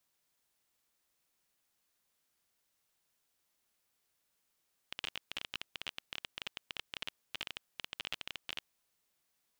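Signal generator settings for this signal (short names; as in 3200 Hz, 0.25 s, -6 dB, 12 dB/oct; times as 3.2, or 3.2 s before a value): random clicks 19/s -21.5 dBFS 3.77 s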